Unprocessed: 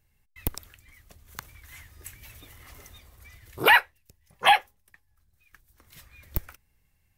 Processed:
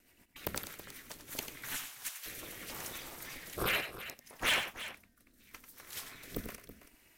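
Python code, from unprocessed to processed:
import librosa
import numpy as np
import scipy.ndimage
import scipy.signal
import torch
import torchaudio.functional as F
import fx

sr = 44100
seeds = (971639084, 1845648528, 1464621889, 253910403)

p1 = fx.highpass(x, sr, hz=860.0, slope=24, at=(1.76, 2.26))
p2 = fx.spec_gate(p1, sr, threshold_db=-10, keep='weak')
p3 = fx.over_compress(p2, sr, threshold_db=-39.0, ratio=-1.0)
p4 = p2 + F.gain(torch.from_numpy(p3), 2.0).numpy()
p5 = p4 * np.sin(2.0 * np.pi * 140.0 * np.arange(len(p4)) / sr)
p6 = fx.rotary_switch(p5, sr, hz=8.0, then_hz=0.75, switch_at_s=0.8)
p7 = np.clip(p6, -10.0 ** (-27.0 / 20.0), 10.0 ** (-27.0 / 20.0))
p8 = p7 + fx.echo_multitap(p7, sr, ms=(93, 327), db=(-9.5, -13.5), dry=0)
y = F.gain(torch.from_numpy(p8), 2.0).numpy()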